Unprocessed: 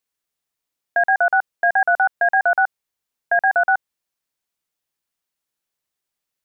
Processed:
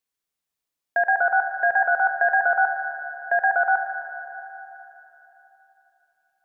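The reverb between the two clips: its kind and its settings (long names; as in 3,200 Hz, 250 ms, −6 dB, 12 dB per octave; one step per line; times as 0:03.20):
four-comb reverb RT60 3.5 s, combs from 29 ms, DRR 6 dB
level −3.5 dB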